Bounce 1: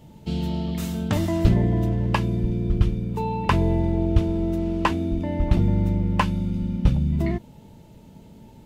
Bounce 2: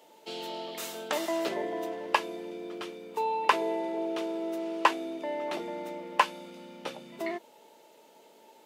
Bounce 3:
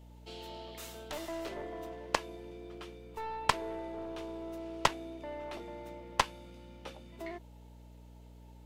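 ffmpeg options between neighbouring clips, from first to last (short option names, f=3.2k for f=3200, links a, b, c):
-af "highpass=f=420:w=0.5412,highpass=f=420:w=1.3066"
-af "aeval=exprs='val(0)+0.00631*(sin(2*PI*60*n/s)+sin(2*PI*2*60*n/s)/2+sin(2*PI*3*60*n/s)/3+sin(2*PI*4*60*n/s)/4+sin(2*PI*5*60*n/s)/5)':c=same,aeval=exprs='0.531*(cos(1*acos(clip(val(0)/0.531,-1,1)))-cos(1*PI/2))+0.211*(cos(4*acos(clip(val(0)/0.531,-1,1)))-cos(4*PI/2))+0.188*(cos(6*acos(clip(val(0)/0.531,-1,1)))-cos(6*PI/2))+0.133*(cos(7*acos(clip(val(0)/0.531,-1,1)))-cos(7*PI/2))+0.0266*(cos(8*acos(clip(val(0)/0.531,-1,1)))-cos(8*PI/2))':c=same,volume=-5.5dB"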